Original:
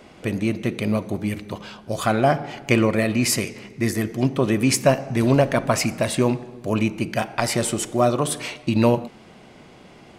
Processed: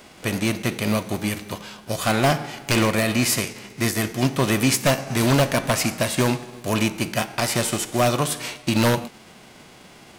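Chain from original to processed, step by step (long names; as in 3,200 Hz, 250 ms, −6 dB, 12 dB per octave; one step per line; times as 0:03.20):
spectral envelope flattened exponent 0.6
wave folding −10.5 dBFS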